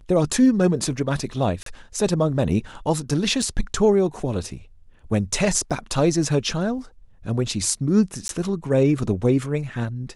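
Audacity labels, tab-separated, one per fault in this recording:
1.630000	1.660000	dropout 33 ms
3.420000	3.420000	dropout 4.2 ms
5.700000	5.710000	dropout 5.5 ms
8.280000	8.290000	dropout 12 ms

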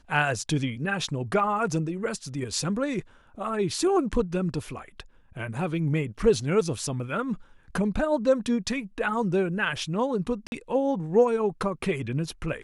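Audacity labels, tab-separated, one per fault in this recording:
10.470000	10.520000	dropout 51 ms

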